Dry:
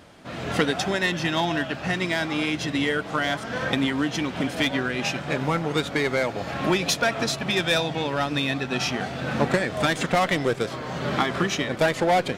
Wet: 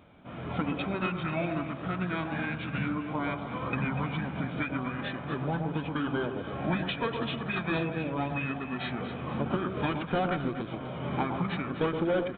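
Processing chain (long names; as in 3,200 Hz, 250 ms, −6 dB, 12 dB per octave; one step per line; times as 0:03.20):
notch filter 2,700 Hz, Q 5.5
formants moved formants −6 semitones
on a send: delay that swaps between a low-pass and a high-pass 121 ms, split 1,200 Hz, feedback 58%, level −6 dB
on the sum: downsampling to 8,000 Hz
every ending faded ahead of time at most 140 dB per second
level −7 dB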